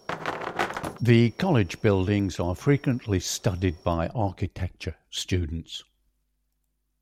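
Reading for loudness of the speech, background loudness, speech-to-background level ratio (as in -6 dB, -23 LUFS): -25.5 LUFS, -31.0 LUFS, 5.5 dB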